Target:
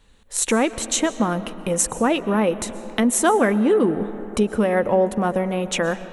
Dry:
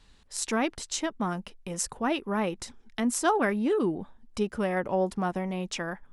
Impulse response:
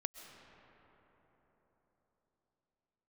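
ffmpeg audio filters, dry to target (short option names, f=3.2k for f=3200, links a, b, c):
-filter_complex "[0:a]equalizer=f=200:t=o:w=0.33:g=8,equalizer=f=500:t=o:w=0.33:g=8,equalizer=f=5k:t=o:w=0.33:g=-12,acompressor=threshold=-30dB:ratio=2,equalizer=f=190:t=o:w=0.23:g=-8,dynaudnorm=f=220:g=3:m=10dB,asplit=2[a][b];[1:a]atrim=start_sample=2205,highshelf=f=7.9k:g=11[c];[b][c]afir=irnorm=-1:irlink=0,volume=-1.5dB[d];[a][d]amix=inputs=2:normalize=0,volume=-2.5dB"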